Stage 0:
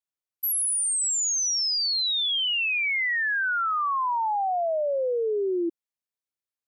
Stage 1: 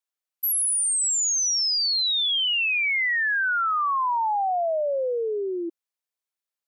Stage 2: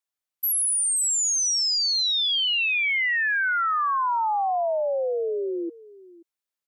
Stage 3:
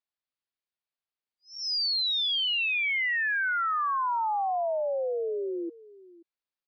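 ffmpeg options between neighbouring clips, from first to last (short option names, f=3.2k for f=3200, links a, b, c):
-af "highpass=430,volume=2dB"
-af "aecho=1:1:530:0.1"
-af "aresample=11025,aresample=44100,volume=-4dB"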